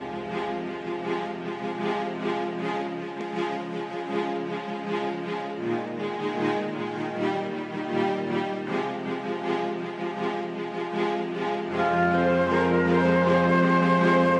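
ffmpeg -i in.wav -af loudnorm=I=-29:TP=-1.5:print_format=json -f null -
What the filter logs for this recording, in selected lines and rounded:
"input_i" : "-25.3",
"input_tp" : "-9.6",
"input_lra" : "8.5",
"input_thresh" : "-35.3",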